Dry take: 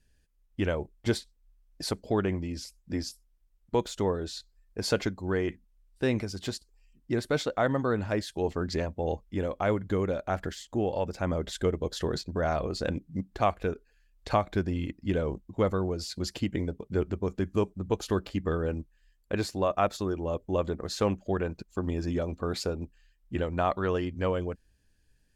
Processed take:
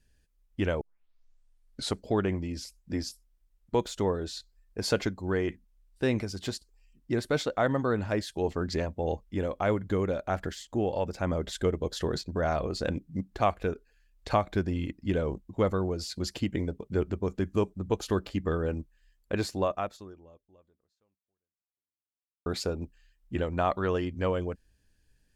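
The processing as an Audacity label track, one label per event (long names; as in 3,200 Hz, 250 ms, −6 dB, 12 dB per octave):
0.810000	0.810000	tape start 1.16 s
19.630000	22.460000	fade out exponential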